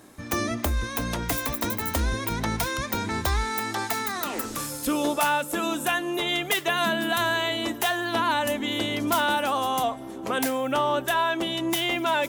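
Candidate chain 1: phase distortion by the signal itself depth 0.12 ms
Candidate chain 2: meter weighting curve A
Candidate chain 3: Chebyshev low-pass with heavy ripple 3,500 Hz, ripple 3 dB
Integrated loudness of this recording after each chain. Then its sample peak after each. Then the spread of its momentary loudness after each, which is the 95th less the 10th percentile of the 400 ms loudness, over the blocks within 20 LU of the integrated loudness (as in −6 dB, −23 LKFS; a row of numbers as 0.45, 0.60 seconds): −26.5, −26.5, −28.0 LKFS; −13.0, −11.0, −14.5 dBFS; 5, 7, 7 LU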